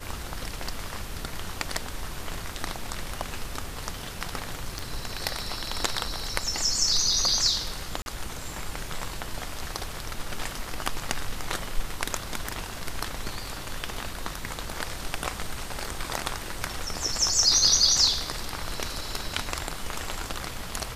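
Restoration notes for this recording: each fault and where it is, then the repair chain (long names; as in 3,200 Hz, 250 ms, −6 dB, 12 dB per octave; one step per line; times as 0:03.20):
0:04.79: click
0:08.02–0:08.06: drop-out 41 ms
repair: click removal
repair the gap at 0:08.02, 41 ms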